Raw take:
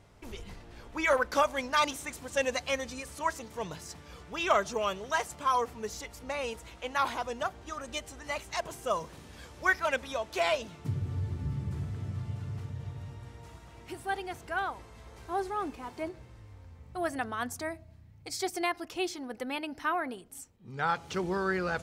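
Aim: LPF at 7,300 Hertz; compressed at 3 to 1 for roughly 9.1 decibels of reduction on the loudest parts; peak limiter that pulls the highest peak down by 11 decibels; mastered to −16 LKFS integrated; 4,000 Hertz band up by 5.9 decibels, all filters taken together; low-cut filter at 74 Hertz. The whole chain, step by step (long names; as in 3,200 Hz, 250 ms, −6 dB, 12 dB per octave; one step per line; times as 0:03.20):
high-pass filter 74 Hz
low-pass filter 7,300 Hz
parametric band 4,000 Hz +8 dB
downward compressor 3 to 1, threshold −32 dBFS
level +24.5 dB
brickwall limiter −5.5 dBFS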